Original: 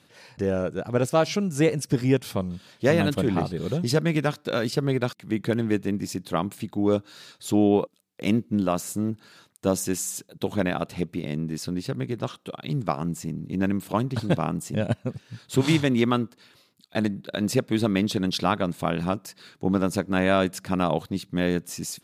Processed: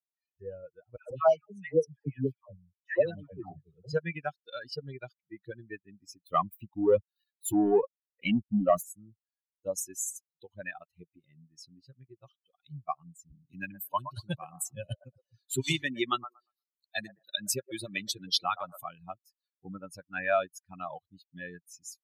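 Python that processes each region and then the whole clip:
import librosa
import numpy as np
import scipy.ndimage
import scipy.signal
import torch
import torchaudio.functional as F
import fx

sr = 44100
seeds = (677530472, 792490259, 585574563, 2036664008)

y = fx.chain(x, sr, fx.high_shelf(hz=2400.0, db=-7.0),
    fx.dispersion(late='lows', ms=148.0, hz=990.0), at=(0.96, 3.93))
y = fx.chain(y, sr, fx.peak_eq(hz=5600.0, db=-7.0, octaves=0.93),
    fx.leveller(passes=2), at=(6.26, 8.83))
y = fx.chain(y, sr, fx.high_shelf(hz=5000.0, db=9.0),
    fx.echo_wet_bandpass(ms=117, feedback_pct=38, hz=760.0, wet_db=-4.0),
    fx.band_squash(depth_pct=40), at=(13.31, 18.84))
y = fx.bin_expand(y, sr, power=3.0)
y = fx.low_shelf(y, sr, hz=230.0, db=-11.0)
y = y + 0.33 * np.pad(y, (int(1.7 * sr / 1000.0), 0))[:len(y)]
y = F.gain(torch.from_numpy(y), 2.5).numpy()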